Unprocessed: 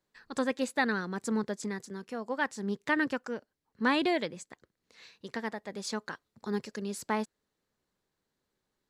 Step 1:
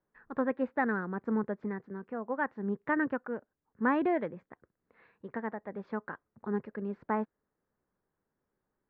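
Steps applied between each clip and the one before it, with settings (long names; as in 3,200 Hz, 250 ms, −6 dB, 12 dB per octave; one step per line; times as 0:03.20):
low-pass filter 1,700 Hz 24 dB per octave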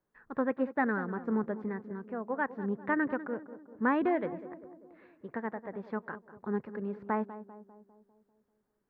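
tape delay 198 ms, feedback 63%, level −11.5 dB, low-pass 1,000 Hz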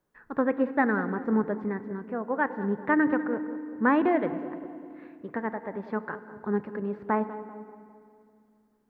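feedback delay network reverb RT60 2.3 s, low-frequency decay 1.4×, high-frequency decay 0.95×, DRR 13 dB
level +5 dB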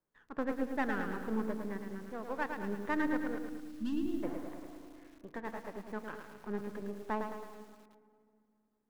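gain on one half-wave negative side −7 dB
gain on a spectral selection 0:03.39–0:04.23, 350–2,600 Hz −26 dB
feedback echo at a low word length 109 ms, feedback 55%, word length 8 bits, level −6 dB
level −8 dB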